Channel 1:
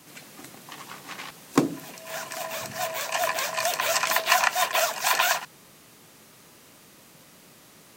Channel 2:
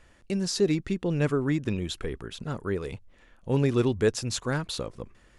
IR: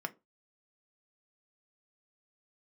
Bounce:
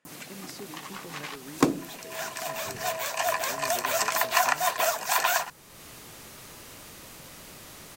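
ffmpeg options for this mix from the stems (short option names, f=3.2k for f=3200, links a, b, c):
-filter_complex "[0:a]adynamicequalizer=threshold=0.0126:dfrequency=3200:dqfactor=0.76:tfrequency=3200:tqfactor=0.76:attack=5:release=100:ratio=0.375:range=3:mode=cutabove:tftype=bell,acompressor=mode=upward:threshold=-37dB:ratio=2.5,asubboost=boost=5:cutoff=76,adelay=50,volume=0dB[a];[1:a]highpass=f=160:w=0.5412,highpass=f=160:w=1.3066,acompressor=threshold=-28dB:ratio=6,volume=-13dB[b];[a][b]amix=inputs=2:normalize=0"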